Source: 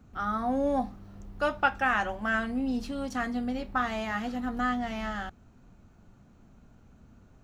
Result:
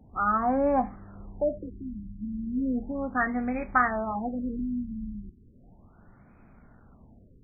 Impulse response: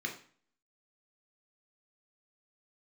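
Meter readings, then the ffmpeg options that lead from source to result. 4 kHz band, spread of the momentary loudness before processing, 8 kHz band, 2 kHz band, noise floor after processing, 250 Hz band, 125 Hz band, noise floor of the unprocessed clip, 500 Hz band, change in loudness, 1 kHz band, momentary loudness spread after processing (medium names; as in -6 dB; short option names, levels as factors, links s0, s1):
under -40 dB, 8 LU, under -25 dB, -2.5 dB, -56 dBFS, +1.5 dB, +1.0 dB, -57 dBFS, +2.5 dB, +1.0 dB, +1.5 dB, 15 LU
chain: -af "tiltshelf=f=830:g=-4,afftfilt=real='re*lt(b*sr/1024,300*pow(2600/300,0.5+0.5*sin(2*PI*0.35*pts/sr)))':imag='im*lt(b*sr/1024,300*pow(2600/300,0.5+0.5*sin(2*PI*0.35*pts/sr)))':win_size=1024:overlap=0.75,volume=1.78"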